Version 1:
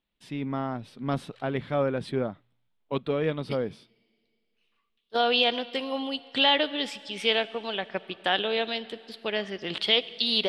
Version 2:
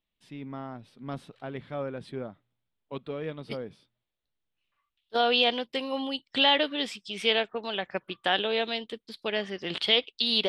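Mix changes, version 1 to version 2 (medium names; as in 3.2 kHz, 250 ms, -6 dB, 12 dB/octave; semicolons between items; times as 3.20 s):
first voice -8.0 dB; reverb: off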